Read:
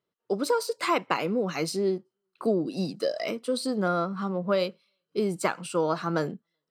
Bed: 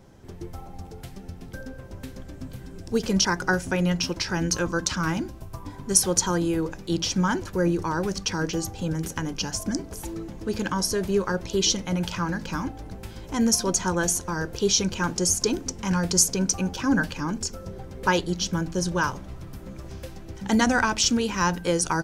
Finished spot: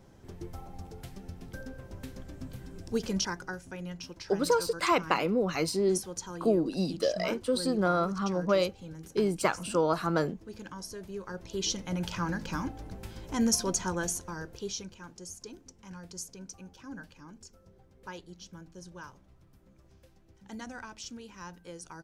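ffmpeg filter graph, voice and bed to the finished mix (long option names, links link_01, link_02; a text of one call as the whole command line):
ffmpeg -i stem1.wav -i stem2.wav -filter_complex "[0:a]adelay=4000,volume=-0.5dB[link_01];[1:a]volume=7.5dB,afade=type=out:start_time=2.8:duration=0.74:silence=0.251189,afade=type=in:start_time=11.18:duration=1.1:silence=0.251189,afade=type=out:start_time=13.43:duration=1.55:silence=0.141254[link_02];[link_01][link_02]amix=inputs=2:normalize=0" out.wav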